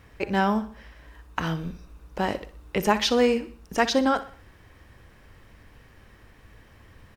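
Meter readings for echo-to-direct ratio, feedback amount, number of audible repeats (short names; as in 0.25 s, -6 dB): -13.5 dB, 43%, 3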